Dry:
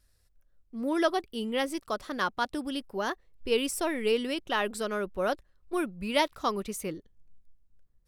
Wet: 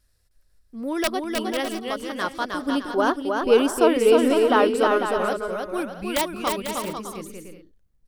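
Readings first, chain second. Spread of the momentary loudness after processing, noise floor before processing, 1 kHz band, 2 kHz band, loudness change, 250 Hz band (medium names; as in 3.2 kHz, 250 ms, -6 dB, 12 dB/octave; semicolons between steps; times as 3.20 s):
13 LU, -68 dBFS, +7.5 dB, +5.5 dB, +8.5 dB, +8.0 dB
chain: integer overflow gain 15 dB; time-frequency box 2.68–4.97 s, 230–1600 Hz +9 dB; bouncing-ball echo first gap 310 ms, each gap 0.6×, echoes 5; trim +1.5 dB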